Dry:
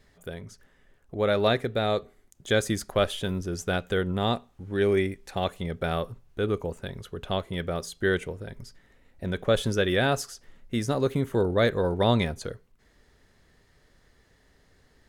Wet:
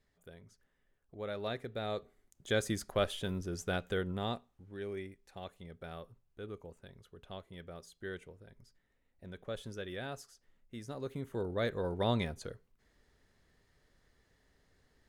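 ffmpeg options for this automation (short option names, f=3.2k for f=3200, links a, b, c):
-af "volume=1.5dB,afade=t=in:st=1.42:d=1.24:silence=0.375837,afade=t=out:st=3.86:d=0.94:silence=0.298538,afade=t=in:st=10.81:d=1.27:silence=0.354813"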